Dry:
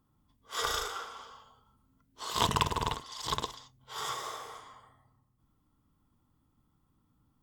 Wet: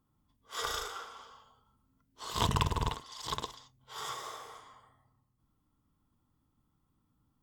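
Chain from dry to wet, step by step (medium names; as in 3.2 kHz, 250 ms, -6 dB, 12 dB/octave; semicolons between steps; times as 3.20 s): 2.23–2.90 s: bass shelf 170 Hz +10.5 dB; trim -3.5 dB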